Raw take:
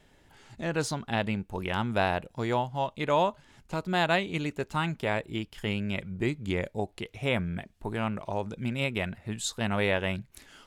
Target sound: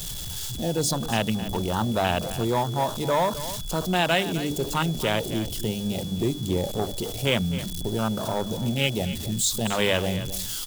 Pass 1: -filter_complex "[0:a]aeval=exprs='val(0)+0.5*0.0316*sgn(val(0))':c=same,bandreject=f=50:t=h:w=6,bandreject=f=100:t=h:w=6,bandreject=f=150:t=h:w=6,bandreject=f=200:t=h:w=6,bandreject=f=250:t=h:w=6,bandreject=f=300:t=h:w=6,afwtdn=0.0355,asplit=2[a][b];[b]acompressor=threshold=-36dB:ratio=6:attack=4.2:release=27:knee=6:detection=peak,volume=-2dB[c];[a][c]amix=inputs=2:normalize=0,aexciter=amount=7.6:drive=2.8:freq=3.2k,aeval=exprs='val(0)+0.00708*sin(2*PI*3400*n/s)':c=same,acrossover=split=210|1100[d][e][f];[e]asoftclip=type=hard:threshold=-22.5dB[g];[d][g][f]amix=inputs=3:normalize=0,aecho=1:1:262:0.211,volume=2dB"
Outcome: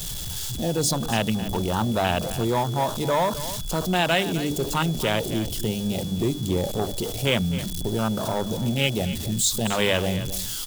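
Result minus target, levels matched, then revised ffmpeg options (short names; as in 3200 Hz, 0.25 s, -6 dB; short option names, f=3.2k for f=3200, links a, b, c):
compressor: peak gain reduction -10 dB
-filter_complex "[0:a]aeval=exprs='val(0)+0.5*0.0316*sgn(val(0))':c=same,bandreject=f=50:t=h:w=6,bandreject=f=100:t=h:w=6,bandreject=f=150:t=h:w=6,bandreject=f=200:t=h:w=6,bandreject=f=250:t=h:w=6,bandreject=f=300:t=h:w=6,afwtdn=0.0355,asplit=2[a][b];[b]acompressor=threshold=-48dB:ratio=6:attack=4.2:release=27:knee=6:detection=peak,volume=-2dB[c];[a][c]amix=inputs=2:normalize=0,aexciter=amount=7.6:drive=2.8:freq=3.2k,aeval=exprs='val(0)+0.00708*sin(2*PI*3400*n/s)':c=same,acrossover=split=210|1100[d][e][f];[e]asoftclip=type=hard:threshold=-22.5dB[g];[d][g][f]amix=inputs=3:normalize=0,aecho=1:1:262:0.211,volume=2dB"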